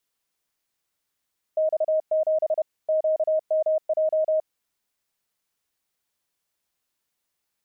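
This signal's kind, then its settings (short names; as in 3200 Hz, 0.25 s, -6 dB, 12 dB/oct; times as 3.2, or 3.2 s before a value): Morse "X7 QMJ" 31 wpm 627 Hz -18.5 dBFS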